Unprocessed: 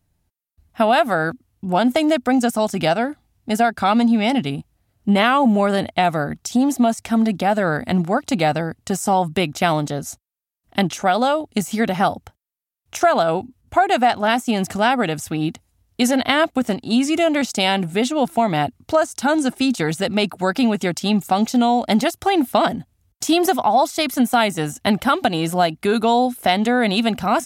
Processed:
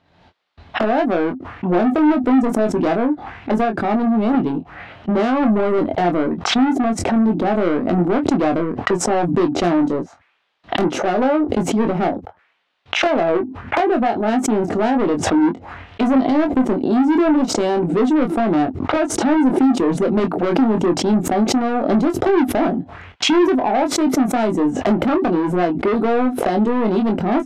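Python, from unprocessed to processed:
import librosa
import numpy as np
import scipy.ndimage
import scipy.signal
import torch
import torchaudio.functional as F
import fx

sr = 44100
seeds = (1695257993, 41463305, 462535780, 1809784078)

p1 = fx.env_lowpass(x, sr, base_hz=870.0, full_db=-17.5)
p2 = fx.rider(p1, sr, range_db=3, speed_s=0.5)
p3 = p1 + (p2 * 10.0 ** (2.0 / 20.0))
p4 = fx.auto_wah(p3, sr, base_hz=340.0, top_hz=3900.0, q=2.2, full_db=-12.5, direction='down')
p5 = 10.0 ** (-19.5 / 20.0) * np.tanh(p4 / 10.0 ** (-19.5 / 20.0))
p6 = p5 + fx.room_early_taps(p5, sr, ms=(23, 34), db=(-5.5, -17.0), dry=0)
p7 = fx.pre_swell(p6, sr, db_per_s=58.0)
y = p7 * 10.0 ** (5.5 / 20.0)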